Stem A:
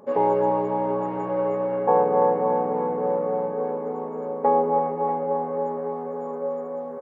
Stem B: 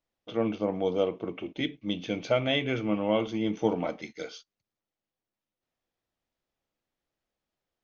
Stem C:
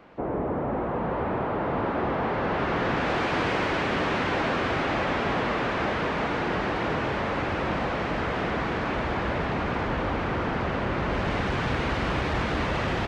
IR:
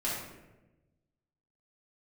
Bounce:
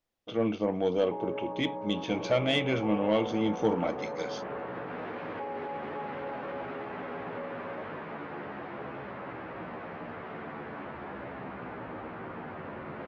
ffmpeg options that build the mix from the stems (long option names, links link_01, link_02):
-filter_complex "[0:a]adelay=950,volume=-12.5dB[link_01];[1:a]asoftclip=type=tanh:threshold=-17dB,volume=1dB[link_02];[2:a]asplit=2[link_03][link_04];[link_04]adelay=11.9,afreqshift=-0.43[link_05];[link_03][link_05]amix=inputs=2:normalize=1,adelay=1900,volume=-9dB[link_06];[link_01][link_06]amix=inputs=2:normalize=0,highpass=130,lowpass=2200,alimiter=level_in=5dB:limit=-24dB:level=0:latency=1:release=30,volume=-5dB,volume=0dB[link_07];[link_02][link_07]amix=inputs=2:normalize=0"